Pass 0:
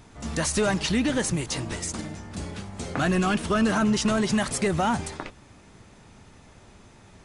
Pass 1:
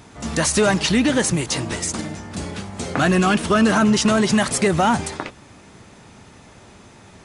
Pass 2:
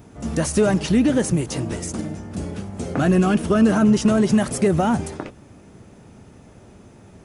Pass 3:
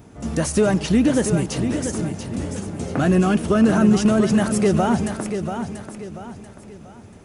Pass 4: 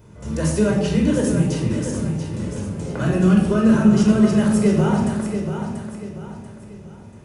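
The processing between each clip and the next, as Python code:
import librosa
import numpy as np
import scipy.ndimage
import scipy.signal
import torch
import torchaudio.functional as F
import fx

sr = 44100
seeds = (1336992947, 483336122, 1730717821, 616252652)

y1 = fx.highpass(x, sr, hz=100.0, slope=6)
y1 = y1 * librosa.db_to_amplitude(7.0)
y2 = fx.graphic_eq(y1, sr, hz=(1000, 2000, 4000, 8000), db=(-7, -7, -10, -7))
y2 = y2 * librosa.db_to_amplitude(1.5)
y3 = fx.echo_feedback(y2, sr, ms=687, feedback_pct=37, wet_db=-8)
y4 = fx.room_shoebox(y3, sr, seeds[0], volume_m3=2100.0, walls='furnished', distance_m=4.9)
y4 = y4 * librosa.db_to_amplitude(-6.5)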